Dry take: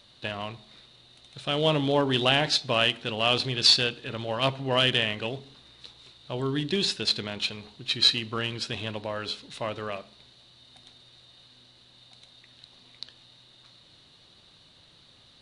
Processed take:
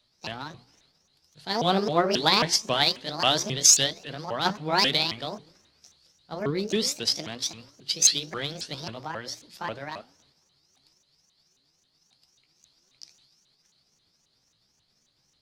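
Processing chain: sawtooth pitch modulation +8.5 st, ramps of 269 ms; hum notches 60/120/180 Hz; three bands expanded up and down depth 40%

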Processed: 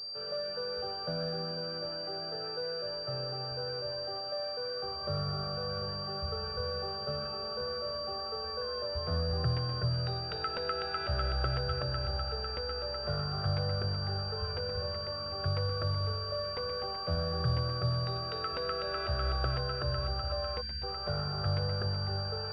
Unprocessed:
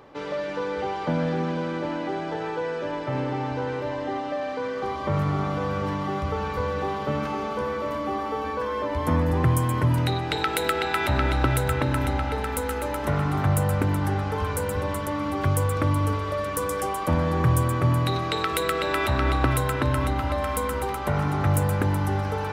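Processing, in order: static phaser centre 1.4 kHz, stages 8; time-frequency box 20.61–20.83 s, 280–1500 Hz -29 dB; class-D stage that switches slowly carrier 4.7 kHz; trim -7.5 dB

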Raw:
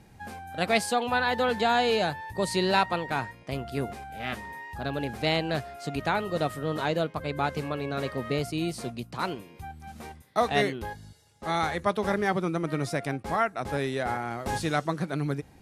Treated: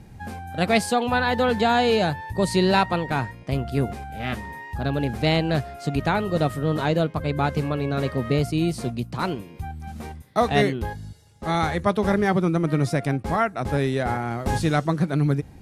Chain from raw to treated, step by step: bass shelf 270 Hz +9.5 dB; trim +2.5 dB

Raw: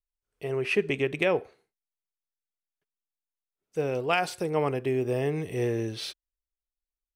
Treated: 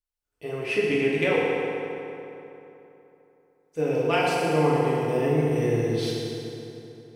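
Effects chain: FDN reverb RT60 3.2 s, high-frequency decay 0.65×, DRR -6.5 dB; trim -3.5 dB

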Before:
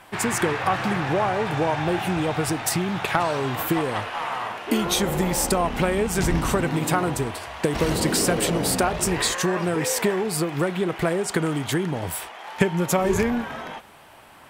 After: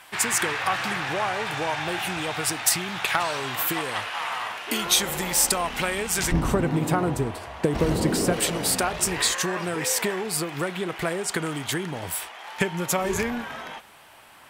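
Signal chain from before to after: tilt shelf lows -7.5 dB, from 6.31 s lows +3.5 dB, from 8.32 s lows -4 dB; trim -2.5 dB

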